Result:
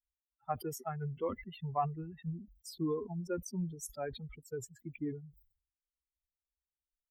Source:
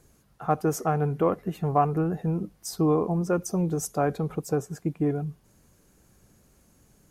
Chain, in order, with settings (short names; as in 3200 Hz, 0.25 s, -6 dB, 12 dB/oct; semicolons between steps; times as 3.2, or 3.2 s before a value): per-bin expansion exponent 3; sustainer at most 110 dB/s; gain -7.5 dB